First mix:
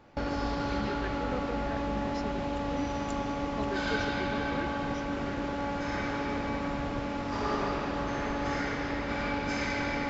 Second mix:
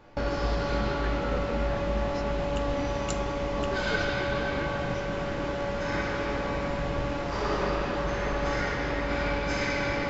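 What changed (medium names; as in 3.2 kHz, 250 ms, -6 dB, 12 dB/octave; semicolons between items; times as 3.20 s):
second sound +11.0 dB; reverb: on, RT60 0.40 s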